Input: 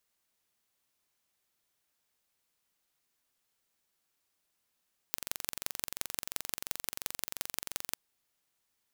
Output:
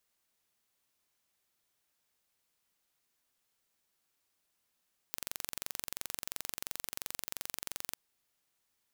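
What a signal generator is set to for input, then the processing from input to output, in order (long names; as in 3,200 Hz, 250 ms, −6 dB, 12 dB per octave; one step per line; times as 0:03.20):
impulse train 22.9 per second, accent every 4, −4 dBFS 2.80 s
brickwall limiter −9.5 dBFS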